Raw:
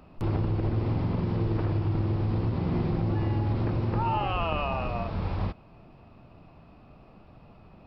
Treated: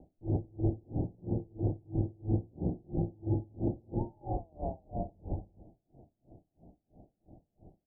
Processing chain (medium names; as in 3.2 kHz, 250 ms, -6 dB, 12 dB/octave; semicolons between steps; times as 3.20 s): steep low-pass 800 Hz 72 dB/octave; peaking EQ 320 Hz +6.5 dB 0.35 oct; on a send: delay 106 ms -9 dB; on the sum: logarithmic tremolo 3 Hz, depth 33 dB; trim -2 dB